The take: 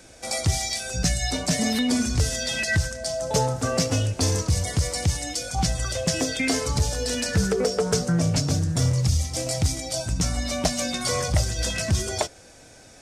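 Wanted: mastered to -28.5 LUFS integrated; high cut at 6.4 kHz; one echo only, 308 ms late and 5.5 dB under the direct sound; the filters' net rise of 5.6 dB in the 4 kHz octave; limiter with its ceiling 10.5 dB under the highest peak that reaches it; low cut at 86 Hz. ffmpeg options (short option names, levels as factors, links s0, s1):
-af "highpass=86,lowpass=6400,equalizer=f=4000:t=o:g=8.5,alimiter=limit=0.141:level=0:latency=1,aecho=1:1:308:0.531,volume=0.668"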